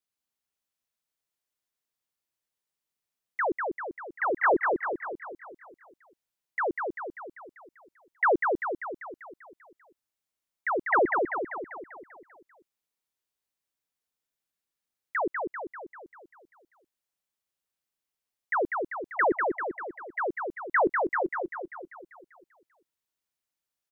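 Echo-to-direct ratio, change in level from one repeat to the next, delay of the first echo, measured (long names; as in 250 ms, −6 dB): −2.5 dB, −5.0 dB, 196 ms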